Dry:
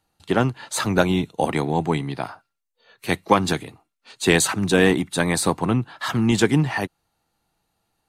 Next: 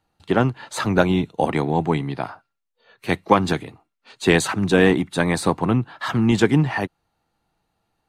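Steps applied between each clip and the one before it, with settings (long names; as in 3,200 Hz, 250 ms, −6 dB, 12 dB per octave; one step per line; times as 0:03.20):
high-shelf EQ 5,000 Hz −11 dB
level +1.5 dB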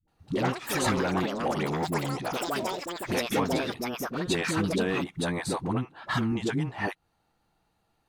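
downward compressor 4 to 1, threshold −27 dBFS, peak gain reduction 15 dB
all-pass dispersion highs, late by 81 ms, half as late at 370 Hz
delay with pitch and tempo change per echo 135 ms, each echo +6 semitones, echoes 3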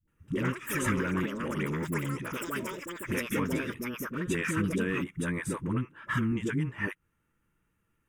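phaser with its sweep stopped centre 1,800 Hz, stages 4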